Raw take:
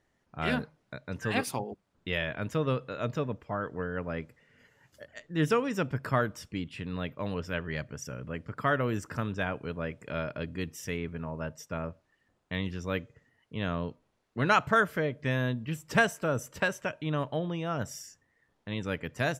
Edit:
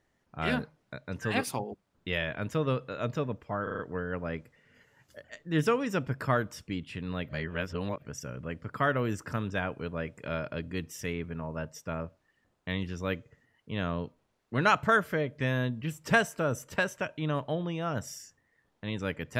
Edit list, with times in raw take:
3.63 s: stutter 0.04 s, 5 plays
7.13–7.86 s: reverse

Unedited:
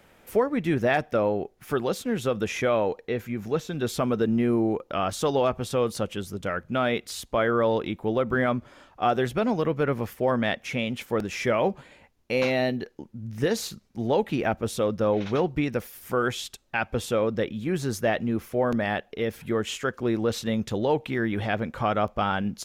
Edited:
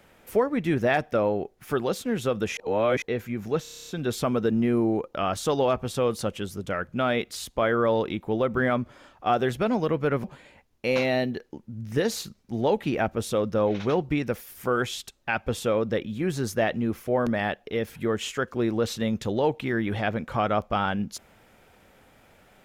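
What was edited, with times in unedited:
2.57–3.02 s: reverse
3.63 s: stutter 0.03 s, 9 plays
10.00–11.70 s: delete

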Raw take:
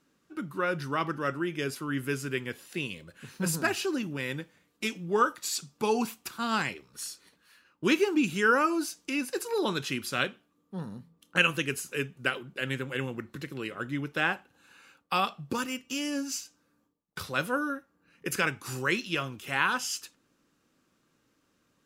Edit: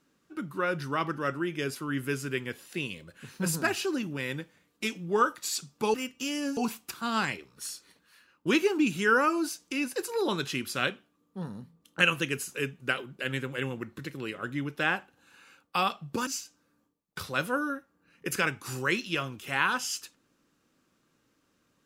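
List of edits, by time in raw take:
15.64–16.27 s: move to 5.94 s

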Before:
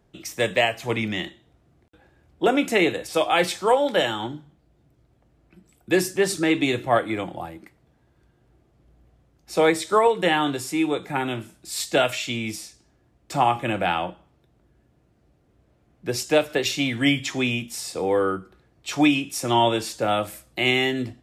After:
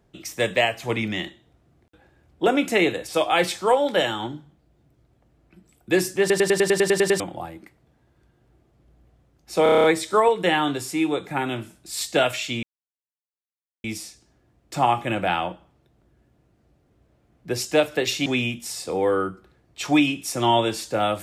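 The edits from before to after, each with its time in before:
6.20 s: stutter in place 0.10 s, 10 plays
9.63 s: stutter 0.03 s, 8 plays
12.42 s: insert silence 1.21 s
16.84–17.34 s: delete

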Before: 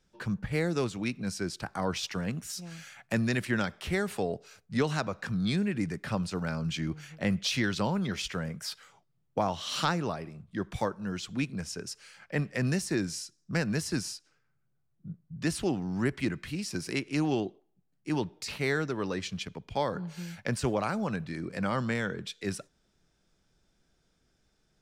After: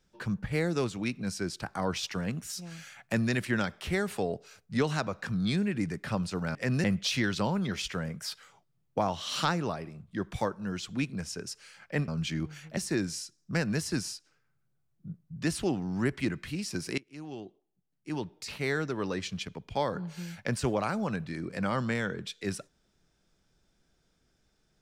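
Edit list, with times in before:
6.55–7.24 s: swap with 12.48–12.77 s
16.98–19.04 s: fade in, from -22.5 dB

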